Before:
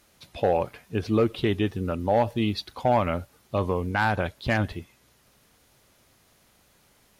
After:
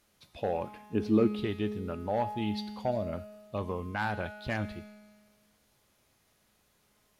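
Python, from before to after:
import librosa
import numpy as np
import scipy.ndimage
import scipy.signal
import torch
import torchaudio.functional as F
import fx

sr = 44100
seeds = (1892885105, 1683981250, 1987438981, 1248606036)

y = fx.peak_eq(x, sr, hz=270.0, db=10.5, octaves=1.1, at=(0.63, 1.44))
y = fx.spec_box(y, sr, start_s=2.91, length_s=0.22, low_hz=710.0, high_hz=3400.0, gain_db=-15)
y = fx.comb_fb(y, sr, f0_hz=210.0, decay_s=1.6, harmonics='all', damping=0.0, mix_pct=80)
y = y * librosa.db_to_amplitude(4.5)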